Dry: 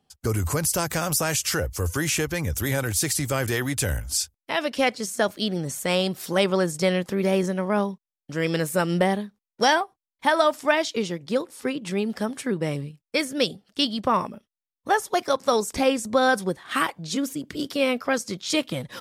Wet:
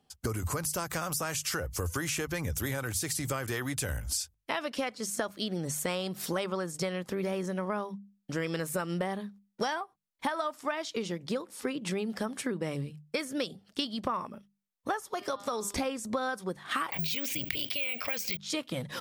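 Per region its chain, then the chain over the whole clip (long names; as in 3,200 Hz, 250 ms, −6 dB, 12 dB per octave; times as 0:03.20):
0:15.00–0:15.78: hum removal 201.5 Hz, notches 27 + downward compressor 3 to 1, threshold −26 dBFS
0:16.92–0:18.37: drawn EQ curve 120 Hz 0 dB, 310 Hz −14 dB, 680 Hz −2 dB, 1,300 Hz −14 dB, 2,400 Hz +14 dB, 3,500 Hz +5 dB, 8,400 Hz −7 dB + bad sample-rate conversion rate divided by 2×, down filtered, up zero stuff + envelope flattener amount 70%
whole clip: mains-hum notches 50/100/150/200 Hz; dynamic equaliser 1,200 Hz, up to +6 dB, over −39 dBFS, Q 2.2; downward compressor 10 to 1, threshold −29 dBFS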